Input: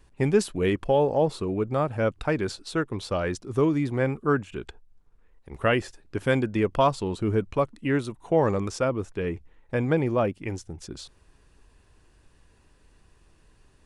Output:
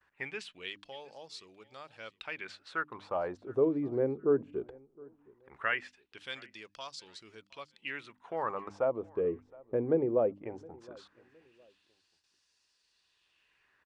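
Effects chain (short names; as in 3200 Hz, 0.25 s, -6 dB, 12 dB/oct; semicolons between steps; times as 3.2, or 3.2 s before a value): notches 50/100/150/200/250/300 Hz; gate with hold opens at -51 dBFS; Bessel low-pass 8800 Hz; low shelf 160 Hz +6.5 dB; in parallel at -0.5 dB: compressor, threshold -29 dBFS, peak gain reduction 14 dB; on the sum: LFO band-pass sine 0.18 Hz 400–5200 Hz; on a send: feedback echo 0.715 s, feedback 29%, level -24 dB; on the sum: gain -3 dB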